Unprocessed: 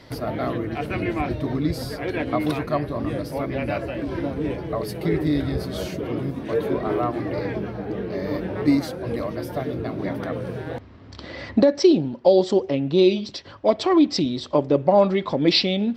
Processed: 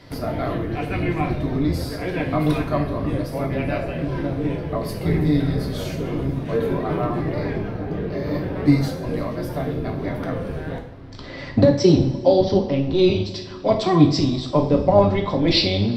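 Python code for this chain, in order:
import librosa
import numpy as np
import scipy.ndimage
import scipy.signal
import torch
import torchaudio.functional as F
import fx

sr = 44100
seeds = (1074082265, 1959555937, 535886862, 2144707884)

y = fx.octave_divider(x, sr, octaves=1, level_db=0.0)
y = fx.steep_lowpass(y, sr, hz=6000.0, slope=96, at=(12.14, 12.66))
y = fx.rev_double_slope(y, sr, seeds[0], early_s=0.52, late_s=3.0, knee_db=-19, drr_db=1.0)
y = F.gain(torch.from_numpy(y), -1.5).numpy()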